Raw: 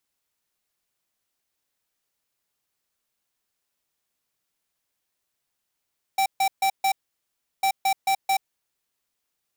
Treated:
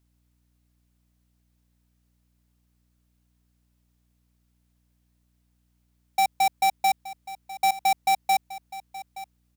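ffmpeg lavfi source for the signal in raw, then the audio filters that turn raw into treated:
-f lavfi -i "aevalsrc='0.0891*(2*lt(mod(777*t,1),0.5)-1)*clip(min(mod(mod(t,1.45),0.22),0.08-mod(mod(t,1.45),0.22))/0.005,0,1)*lt(mod(t,1.45),0.88)':d=2.9:s=44100"
-af "lowshelf=f=470:g=7.5,aeval=exprs='val(0)+0.000447*(sin(2*PI*60*n/s)+sin(2*PI*2*60*n/s)/2+sin(2*PI*3*60*n/s)/3+sin(2*PI*4*60*n/s)/4+sin(2*PI*5*60*n/s)/5)':c=same,aecho=1:1:872:0.15"

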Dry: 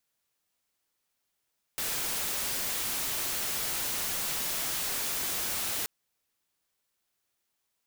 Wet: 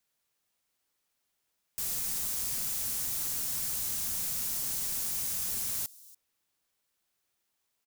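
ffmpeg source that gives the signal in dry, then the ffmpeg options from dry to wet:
-f lavfi -i "anoisesrc=c=white:a=0.0435:d=4.08:r=44100:seed=1"
-filter_complex "[0:a]acrossover=split=240|4800[s0][s1][s2];[s1]aeval=exprs='(mod(100*val(0)+1,2)-1)/100':c=same[s3];[s2]aecho=1:1:286:0.1[s4];[s0][s3][s4]amix=inputs=3:normalize=0"

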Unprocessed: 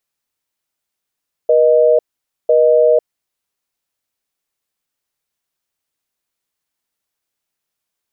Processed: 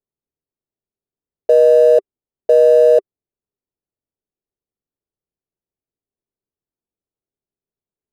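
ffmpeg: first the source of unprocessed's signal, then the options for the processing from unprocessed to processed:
-f lavfi -i "aevalsrc='0.299*(sin(2*PI*480*t)+sin(2*PI*620*t))*clip(min(mod(t,1),0.5-mod(t,1))/0.005,0,1)':d=1.64:s=44100"
-af "equalizer=f=400:t=o:w=0.35:g=6.5,adynamicsmooth=sensitivity=7:basefreq=510"

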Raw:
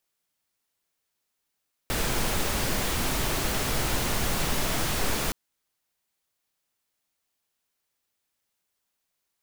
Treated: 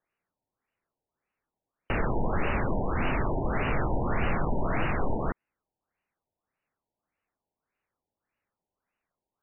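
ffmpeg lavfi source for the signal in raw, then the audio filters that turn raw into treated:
-f lavfi -i "anoisesrc=c=pink:a=0.243:d=3.42:r=44100:seed=1"
-filter_complex "[0:a]asplit=2[s0][s1];[s1]aeval=exprs='(mod(8.91*val(0)+1,2)-1)/8.91':c=same,volume=0.282[s2];[s0][s2]amix=inputs=2:normalize=0,afftfilt=real='re*lt(b*sr/1024,950*pow(3000/950,0.5+0.5*sin(2*PI*1.7*pts/sr)))':imag='im*lt(b*sr/1024,950*pow(3000/950,0.5+0.5*sin(2*PI*1.7*pts/sr)))':win_size=1024:overlap=0.75"

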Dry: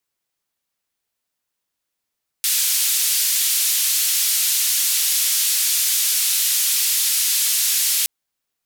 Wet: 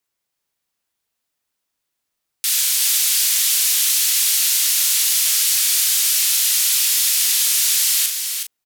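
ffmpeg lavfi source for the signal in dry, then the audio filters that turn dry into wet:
-f lavfi -i "anoisesrc=c=white:d=5.62:r=44100:seed=1,highpass=f=3200,lowpass=f=15000,volume=-11.3dB"
-filter_complex "[0:a]asplit=2[s0][s1];[s1]adelay=38,volume=0.473[s2];[s0][s2]amix=inputs=2:normalize=0,asplit=2[s3][s4];[s4]aecho=0:1:369:0.501[s5];[s3][s5]amix=inputs=2:normalize=0"

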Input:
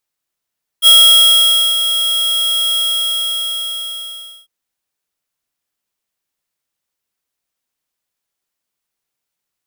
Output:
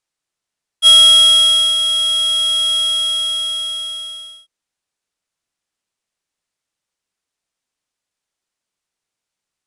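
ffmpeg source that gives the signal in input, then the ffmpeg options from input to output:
-f lavfi -i "aevalsrc='0.531*(2*lt(mod(3290*t,1),0.5)-1)':d=3.65:s=44100,afade=t=in:d=0.048,afade=t=out:st=0.048:d=0.89:silence=0.316,afade=t=out:st=1.94:d=1.71"
-af "lowpass=f=9700:w=0.5412,lowpass=f=9700:w=1.3066"

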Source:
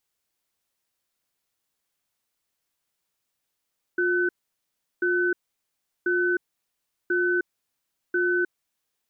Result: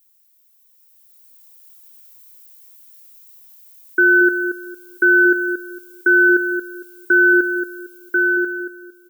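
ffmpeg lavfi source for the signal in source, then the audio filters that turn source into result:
-f lavfi -i "aevalsrc='0.0708*(sin(2*PI*355*t)+sin(2*PI*1510*t))*clip(min(mod(t,1.04),0.31-mod(t,1.04))/0.005,0,1)':d=4.66:s=44100"
-filter_complex "[0:a]aemphasis=mode=production:type=riaa,dynaudnorm=f=220:g=11:m=3.98,asplit=2[s0][s1];[s1]adelay=228,lowpass=f=1200:p=1,volume=0.501,asplit=2[s2][s3];[s3]adelay=228,lowpass=f=1200:p=1,volume=0.3,asplit=2[s4][s5];[s5]adelay=228,lowpass=f=1200:p=1,volume=0.3,asplit=2[s6][s7];[s7]adelay=228,lowpass=f=1200:p=1,volume=0.3[s8];[s2][s4][s6][s8]amix=inputs=4:normalize=0[s9];[s0][s9]amix=inputs=2:normalize=0"

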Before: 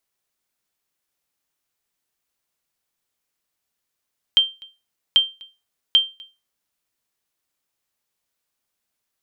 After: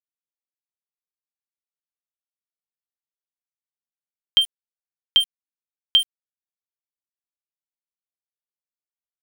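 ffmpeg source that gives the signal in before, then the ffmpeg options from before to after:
-f lavfi -i "aevalsrc='0.473*(sin(2*PI*3150*mod(t,0.79))*exp(-6.91*mod(t,0.79)/0.27)+0.0501*sin(2*PI*3150*max(mod(t,0.79)-0.25,0))*exp(-6.91*max(mod(t,0.79)-0.25,0)/0.27))':d=2.37:s=44100"
-af "lowshelf=f=180:g=9,aeval=exprs='val(0)*gte(abs(val(0)),0.0596)':c=same"

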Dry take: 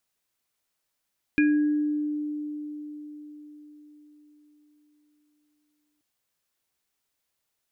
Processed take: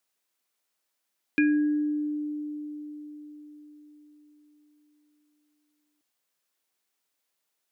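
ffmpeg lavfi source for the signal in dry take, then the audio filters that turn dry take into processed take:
-f lavfi -i "aevalsrc='0.141*pow(10,-3*t/4.81)*sin(2*PI*298*t)+0.0501*pow(10,-3*t/0.79)*sin(2*PI*1650*t)+0.075*pow(10,-3*t/0.25)*sin(2*PI*2420*t)':d=4.63:s=44100"
-af "highpass=220"

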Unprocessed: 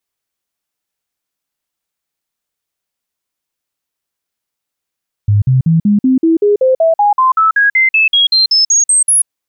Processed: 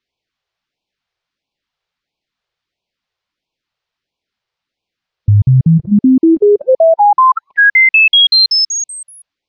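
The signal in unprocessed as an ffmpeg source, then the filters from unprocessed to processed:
-f lavfi -i "aevalsrc='0.473*clip(min(mod(t,0.19),0.14-mod(t,0.19))/0.005,0,1)*sin(2*PI*103*pow(2,floor(t/0.19)/3)*mod(t,0.19))':d=3.99:s=44100"
-filter_complex "[0:a]lowpass=f=4700:w=0.5412,lowpass=f=4700:w=1.3066,asplit=2[s0][s1];[s1]acompressor=threshold=0.126:ratio=6,volume=1[s2];[s0][s2]amix=inputs=2:normalize=0,afftfilt=real='re*(1-between(b*sr/1024,220*pow(1600/220,0.5+0.5*sin(2*PI*1.5*pts/sr))/1.41,220*pow(1600/220,0.5+0.5*sin(2*PI*1.5*pts/sr))*1.41))':imag='im*(1-between(b*sr/1024,220*pow(1600/220,0.5+0.5*sin(2*PI*1.5*pts/sr))/1.41,220*pow(1600/220,0.5+0.5*sin(2*PI*1.5*pts/sr))*1.41))':win_size=1024:overlap=0.75"

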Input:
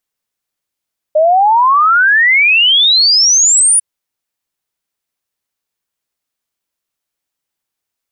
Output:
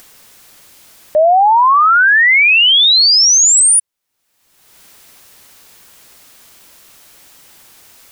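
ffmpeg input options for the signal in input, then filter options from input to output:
-f lavfi -i "aevalsrc='0.501*clip(min(t,2.65-t)/0.01,0,1)*sin(2*PI*600*2.65/log(9900/600)*(exp(log(9900/600)*t/2.65)-1))':d=2.65:s=44100"
-af "acompressor=mode=upward:threshold=0.158:ratio=2.5"

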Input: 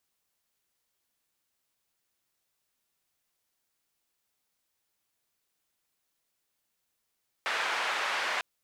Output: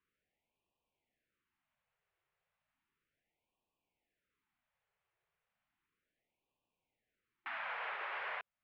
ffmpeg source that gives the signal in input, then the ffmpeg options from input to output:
-f lavfi -i "anoisesrc=c=white:d=0.95:r=44100:seed=1,highpass=f=810,lowpass=f=2000,volume=-14.1dB"
-af "lowpass=f=2600:w=0.5412,lowpass=f=2600:w=1.3066,alimiter=level_in=2.66:limit=0.0631:level=0:latency=1:release=427,volume=0.376,afftfilt=real='re*(1-between(b*sr/1024,240*pow(1700/240,0.5+0.5*sin(2*PI*0.34*pts/sr))/1.41,240*pow(1700/240,0.5+0.5*sin(2*PI*0.34*pts/sr))*1.41))':imag='im*(1-between(b*sr/1024,240*pow(1700/240,0.5+0.5*sin(2*PI*0.34*pts/sr))/1.41,240*pow(1700/240,0.5+0.5*sin(2*PI*0.34*pts/sr))*1.41))':win_size=1024:overlap=0.75"

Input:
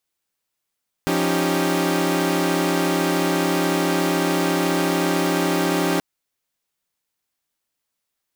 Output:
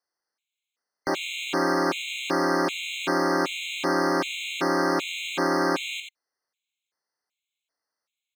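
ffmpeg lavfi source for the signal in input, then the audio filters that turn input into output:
-f lavfi -i "aevalsrc='0.0841*((2*mod(174.61*t,1)-1)+(2*mod(277.18*t,1)-1)+(2*mod(311.13*t,1)-1)+(2*mod(392*t,1)-1))':d=4.93:s=44100"
-filter_complex "[0:a]acrossover=split=310 6700:gain=0.158 1 0.178[s0][s1][s2];[s0][s1][s2]amix=inputs=3:normalize=0,asplit=2[s3][s4];[s4]aecho=0:1:86:0.473[s5];[s3][s5]amix=inputs=2:normalize=0,afftfilt=real='re*gt(sin(2*PI*1.3*pts/sr)*(1-2*mod(floor(b*sr/1024/2100),2)),0)':imag='im*gt(sin(2*PI*1.3*pts/sr)*(1-2*mod(floor(b*sr/1024/2100),2)),0)':win_size=1024:overlap=0.75"

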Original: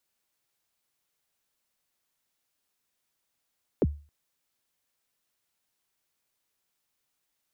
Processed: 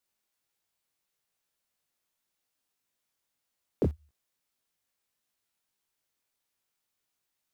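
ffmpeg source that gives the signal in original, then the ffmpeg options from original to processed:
-f lavfi -i "aevalsrc='0.15*pow(10,-3*t/0.35)*sin(2*PI*(540*0.038/log(73/540)*(exp(log(73/540)*min(t,0.038)/0.038)-1)+73*max(t-0.038,0)))':d=0.27:s=44100"
-filter_complex "[0:a]flanger=delay=17:depth=7.5:speed=1.7,asplit=2[s0][s1];[s1]aeval=exprs='val(0)*gte(abs(val(0)),0.0158)':c=same,volume=0.355[s2];[s0][s2]amix=inputs=2:normalize=0"

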